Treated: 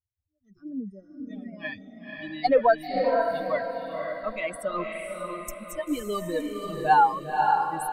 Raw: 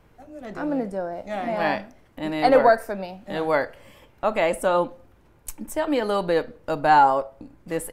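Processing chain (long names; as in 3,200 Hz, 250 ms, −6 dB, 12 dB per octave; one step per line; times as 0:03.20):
spectral dynamics exaggerated over time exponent 3
feedback delay with all-pass diffusion 527 ms, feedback 43%, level −3 dB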